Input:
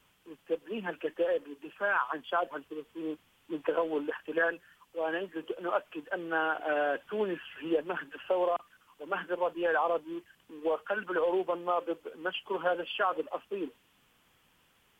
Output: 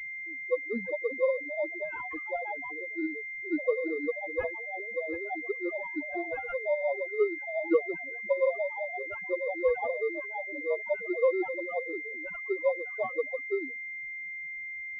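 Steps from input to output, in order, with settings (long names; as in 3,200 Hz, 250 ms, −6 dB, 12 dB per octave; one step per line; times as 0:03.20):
low-pass that shuts in the quiet parts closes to 380 Hz, open at −29 dBFS
low-shelf EQ 200 Hz +4 dB
delay with pitch and tempo change per echo 494 ms, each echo +3 semitones, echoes 2, each echo −6 dB
square-wave tremolo 5.7 Hz, depth 65%, duty 45%
pitch vibrato 9.8 Hz 36 cents
spectral peaks only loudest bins 2
switching amplifier with a slow clock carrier 2,100 Hz
level +7 dB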